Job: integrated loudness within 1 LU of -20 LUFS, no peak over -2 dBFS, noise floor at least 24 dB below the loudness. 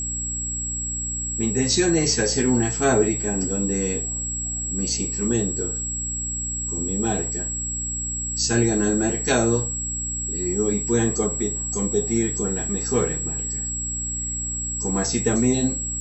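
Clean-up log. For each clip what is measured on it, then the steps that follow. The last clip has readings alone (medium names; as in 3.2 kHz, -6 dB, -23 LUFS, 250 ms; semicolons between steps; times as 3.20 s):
hum 60 Hz; highest harmonic 300 Hz; hum level -31 dBFS; steady tone 7.7 kHz; tone level -26 dBFS; loudness -22.5 LUFS; peak level -7.0 dBFS; loudness target -20.0 LUFS
-> hum notches 60/120/180/240/300 Hz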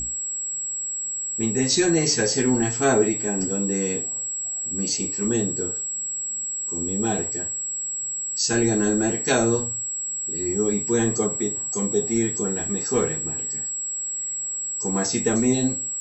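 hum not found; steady tone 7.7 kHz; tone level -26 dBFS
-> band-stop 7.7 kHz, Q 30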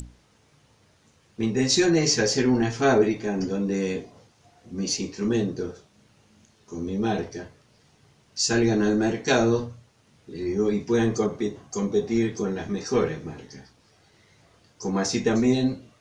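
steady tone not found; loudness -24.5 LUFS; peak level -8.0 dBFS; loudness target -20.0 LUFS
-> trim +4.5 dB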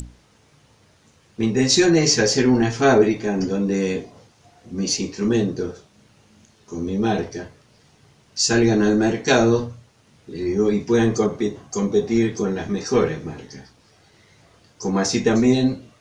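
loudness -20.0 LUFS; peak level -3.5 dBFS; noise floor -57 dBFS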